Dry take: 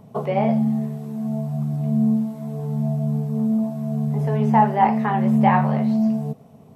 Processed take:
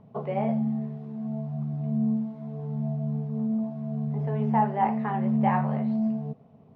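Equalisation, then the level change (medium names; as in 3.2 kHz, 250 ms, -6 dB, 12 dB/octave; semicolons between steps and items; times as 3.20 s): distance through air 260 m; -6.5 dB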